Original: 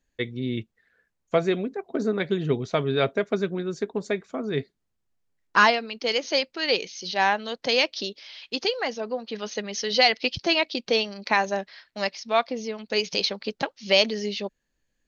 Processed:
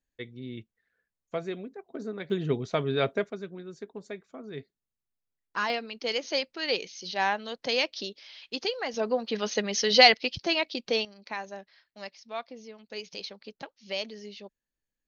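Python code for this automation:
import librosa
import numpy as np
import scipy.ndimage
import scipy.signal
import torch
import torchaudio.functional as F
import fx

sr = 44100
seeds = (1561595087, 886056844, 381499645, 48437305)

y = fx.gain(x, sr, db=fx.steps((0.0, -11.0), (2.3, -3.5), (3.3, -12.5), (5.7, -5.0), (8.94, 2.5), (10.14, -4.5), (11.05, -14.0)))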